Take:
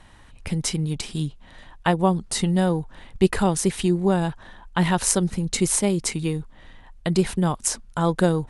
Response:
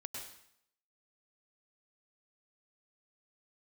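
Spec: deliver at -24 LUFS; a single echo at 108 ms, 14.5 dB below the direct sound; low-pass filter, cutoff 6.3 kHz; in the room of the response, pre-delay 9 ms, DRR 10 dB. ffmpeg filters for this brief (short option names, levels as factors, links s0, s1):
-filter_complex "[0:a]lowpass=6300,aecho=1:1:108:0.188,asplit=2[s0][s1];[1:a]atrim=start_sample=2205,adelay=9[s2];[s1][s2]afir=irnorm=-1:irlink=0,volume=0.398[s3];[s0][s3]amix=inputs=2:normalize=0"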